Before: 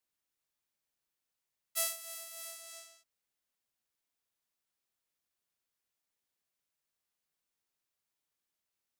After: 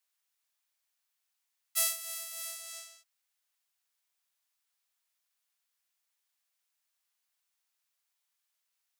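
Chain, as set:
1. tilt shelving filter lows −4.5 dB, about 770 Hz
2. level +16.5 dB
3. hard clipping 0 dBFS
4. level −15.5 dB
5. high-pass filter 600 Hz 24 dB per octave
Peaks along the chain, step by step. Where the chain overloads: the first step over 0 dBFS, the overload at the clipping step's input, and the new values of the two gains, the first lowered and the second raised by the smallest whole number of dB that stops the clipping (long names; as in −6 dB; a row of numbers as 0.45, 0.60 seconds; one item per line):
−10.5, +6.0, 0.0, −15.5, −13.0 dBFS
step 2, 6.0 dB
step 2 +10.5 dB, step 4 −9.5 dB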